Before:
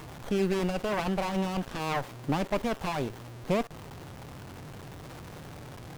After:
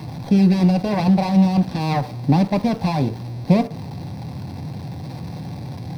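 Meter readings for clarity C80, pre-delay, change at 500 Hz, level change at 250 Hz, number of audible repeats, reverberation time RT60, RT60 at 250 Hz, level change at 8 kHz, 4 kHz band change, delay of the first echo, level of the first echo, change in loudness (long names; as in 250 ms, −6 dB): 21.0 dB, 3 ms, +5.0 dB, +15.5 dB, no echo audible, 0.45 s, 0.35 s, can't be measured, +6.0 dB, no echo audible, no echo audible, +12.5 dB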